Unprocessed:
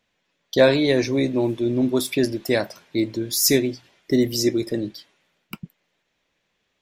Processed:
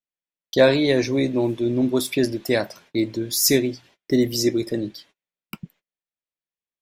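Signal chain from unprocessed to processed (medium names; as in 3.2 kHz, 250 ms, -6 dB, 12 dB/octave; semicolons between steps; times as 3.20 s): gate -51 dBFS, range -29 dB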